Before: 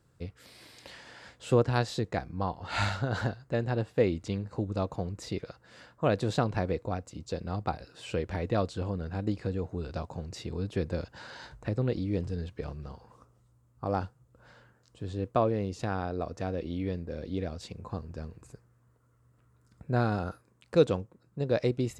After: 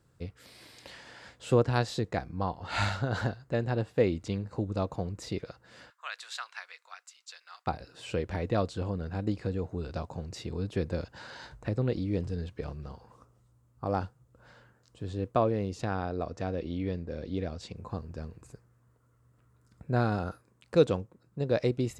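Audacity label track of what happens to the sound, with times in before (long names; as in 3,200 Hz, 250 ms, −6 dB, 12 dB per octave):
5.900000	7.670000	high-pass filter 1,300 Hz 24 dB per octave
15.810000	17.760000	low-pass filter 8,200 Hz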